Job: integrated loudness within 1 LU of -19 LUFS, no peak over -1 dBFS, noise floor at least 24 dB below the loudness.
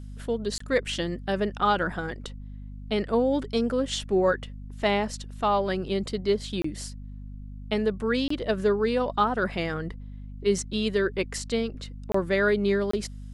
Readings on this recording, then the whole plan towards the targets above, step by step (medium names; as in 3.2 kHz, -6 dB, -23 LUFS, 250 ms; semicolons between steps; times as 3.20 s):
dropouts 5; longest dropout 24 ms; hum 50 Hz; highest harmonic 250 Hz; hum level -37 dBFS; loudness -27.0 LUFS; peak level -10.5 dBFS; loudness target -19.0 LUFS
-> interpolate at 0.58/6.62/8.28/12.12/12.91 s, 24 ms; de-hum 50 Hz, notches 5; trim +8 dB